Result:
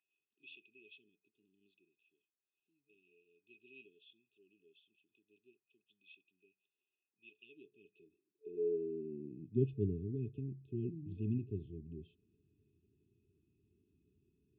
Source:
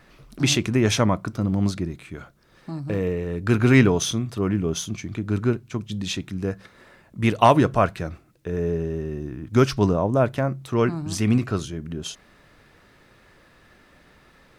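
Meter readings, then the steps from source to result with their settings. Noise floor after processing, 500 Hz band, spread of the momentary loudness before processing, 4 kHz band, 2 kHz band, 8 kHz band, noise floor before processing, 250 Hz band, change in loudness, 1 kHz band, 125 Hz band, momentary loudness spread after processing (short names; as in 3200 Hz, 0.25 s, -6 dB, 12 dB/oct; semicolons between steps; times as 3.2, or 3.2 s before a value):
under -85 dBFS, -19.5 dB, 16 LU, under -35 dB, -32.5 dB, under -40 dB, -55 dBFS, -22.5 dB, -17.0 dB, under -40 dB, -20.0 dB, 23 LU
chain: vocal tract filter a; FFT band-reject 440–2500 Hz; high-pass sweep 1700 Hz -> 84 Hz, 7.29–10.02; gain +8 dB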